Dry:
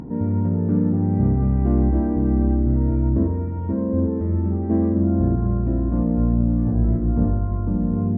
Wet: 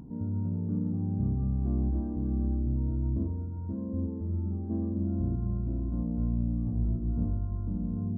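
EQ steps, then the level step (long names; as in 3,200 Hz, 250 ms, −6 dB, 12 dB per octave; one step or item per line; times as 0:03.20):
Gaussian smoothing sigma 7.6 samples
parametric band 500 Hz −8 dB 1.5 octaves
−9.0 dB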